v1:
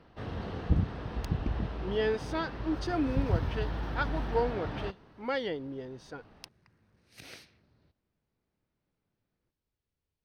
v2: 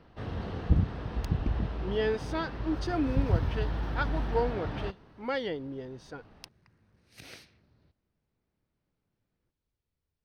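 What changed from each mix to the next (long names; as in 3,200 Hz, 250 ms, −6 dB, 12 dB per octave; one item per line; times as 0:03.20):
master: add low-shelf EQ 140 Hz +3.5 dB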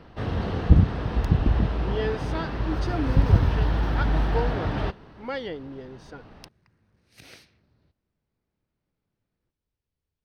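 first sound +8.5 dB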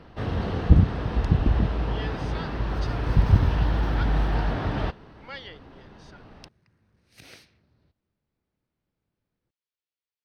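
speech: add resonant band-pass 3,500 Hz, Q 0.7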